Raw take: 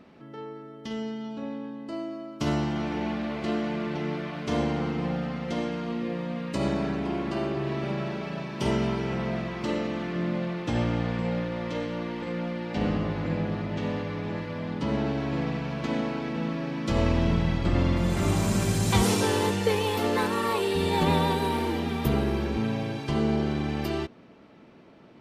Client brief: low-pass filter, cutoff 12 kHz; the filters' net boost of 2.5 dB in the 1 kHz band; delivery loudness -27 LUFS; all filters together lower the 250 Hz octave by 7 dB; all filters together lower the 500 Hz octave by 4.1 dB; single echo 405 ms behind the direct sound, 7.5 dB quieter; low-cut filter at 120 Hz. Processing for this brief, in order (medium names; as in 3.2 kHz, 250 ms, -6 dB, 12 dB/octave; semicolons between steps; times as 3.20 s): high-pass 120 Hz; low-pass 12 kHz; peaking EQ 250 Hz -8.5 dB; peaking EQ 500 Hz -3.5 dB; peaking EQ 1 kHz +4.5 dB; delay 405 ms -7.5 dB; trim +3.5 dB